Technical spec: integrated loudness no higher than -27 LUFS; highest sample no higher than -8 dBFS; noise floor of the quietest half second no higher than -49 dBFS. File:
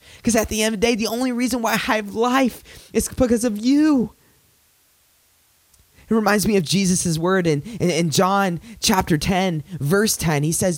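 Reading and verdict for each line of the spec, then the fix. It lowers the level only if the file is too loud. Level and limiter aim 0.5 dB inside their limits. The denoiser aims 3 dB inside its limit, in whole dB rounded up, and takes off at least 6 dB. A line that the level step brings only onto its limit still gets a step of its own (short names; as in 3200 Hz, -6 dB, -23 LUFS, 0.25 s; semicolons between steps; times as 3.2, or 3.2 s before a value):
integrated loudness -19.5 LUFS: fail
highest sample -3.5 dBFS: fail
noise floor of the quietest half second -59 dBFS: OK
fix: gain -8 dB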